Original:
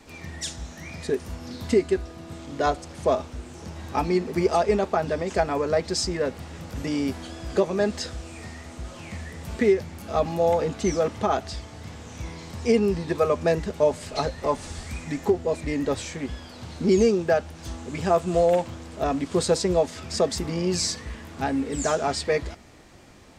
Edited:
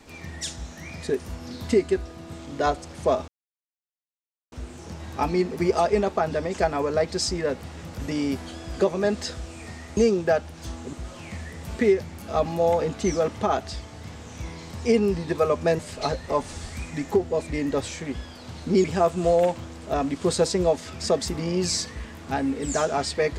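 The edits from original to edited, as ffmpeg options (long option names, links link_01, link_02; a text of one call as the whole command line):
ffmpeg -i in.wav -filter_complex "[0:a]asplit=6[link_01][link_02][link_03][link_04][link_05][link_06];[link_01]atrim=end=3.28,asetpts=PTS-STARTPTS,afade=type=out:start_time=3.276:duration=0.004:curve=hsin,apad=pad_dur=1.24[link_07];[link_02]atrim=start=3.28:end=8.732,asetpts=PTS-STARTPTS,afade=type=in:duration=0.004:curve=hsin[link_08];[link_03]atrim=start=16.978:end=17.942[link_09];[link_04]atrim=start=8.728:end=13.592[link_10];[link_05]atrim=start=13.928:end=16.982[link_11];[link_06]atrim=start=17.938[link_12];[link_07][link_08]concat=n=2:v=0:a=1[link_13];[link_13][link_09]acrossfade=duration=0.004:curve1=hsin:curve2=hsin[link_14];[link_14][link_10]acrossfade=duration=0.004:curve1=hsin:curve2=hsin[link_15];[link_15][link_11]acrossfade=duration=0.004:curve1=hsin:curve2=hsin[link_16];[link_16][link_12]acrossfade=duration=0.004:curve1=hsin:curve2=hsin" out.wav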